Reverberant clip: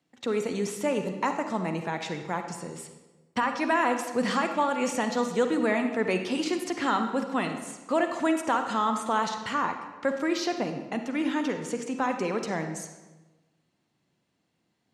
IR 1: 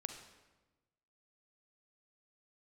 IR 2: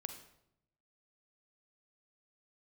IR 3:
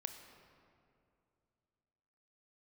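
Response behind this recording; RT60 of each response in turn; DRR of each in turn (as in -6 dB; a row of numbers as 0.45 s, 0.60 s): 1; 1.2 s, 0.75 s, 2.5 s; 6.0 dB, 6.5 dB, 6.5 dB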